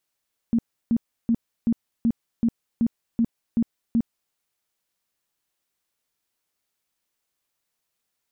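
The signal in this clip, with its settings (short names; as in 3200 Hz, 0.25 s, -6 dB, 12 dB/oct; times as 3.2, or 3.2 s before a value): tone bursts 231 Hz, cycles 13, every 0.38 s, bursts 10, -16.5 dBFS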